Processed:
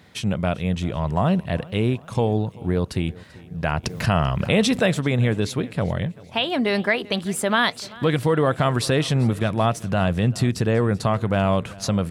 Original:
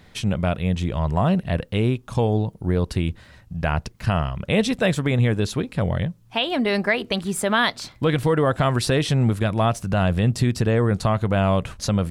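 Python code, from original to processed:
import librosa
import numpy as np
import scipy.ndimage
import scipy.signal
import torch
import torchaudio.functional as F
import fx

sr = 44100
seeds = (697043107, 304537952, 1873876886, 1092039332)

y = scipy.signal.sosfilt(scipy.signal.butter(2, 91.0, 'highpass', fs=sr, output='sos'), x)
y = fx.echo_feedback(y, sr, ms=389, feedback_pct=51, wet_db=-21.5)
y = fx.env_flatten(y, sr, amount_pct=50, at=(3.83, 4.85), fade=0.02)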